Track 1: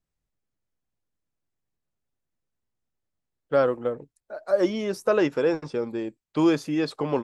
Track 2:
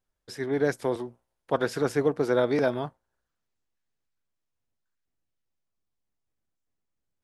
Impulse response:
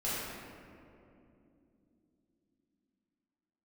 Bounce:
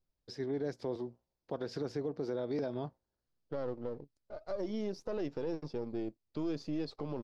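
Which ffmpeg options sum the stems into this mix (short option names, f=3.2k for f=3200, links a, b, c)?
-filter_complex "[0:a]aeval=exprs='if(lt(val(0),0),0.447*val(0),val(0))':c=same,alimiter=limit=-16.5dB:level=0:latency=1:release=50,volume=-3.5dB[a];[1:a]volume=-3.5dB[b];[a][b]amix=inputs=2:normalize=0,firequalizer=gain_entry='entry(330,0);entry(1400,-10);entry(3200,-7);entry(4700,1);entry(8700,-21)':delay=0.05:min_phase=1,alimiter=level_in=3.5dB:limit=-24dB:level=0:latency=1:release=124,volume=-3.5dB"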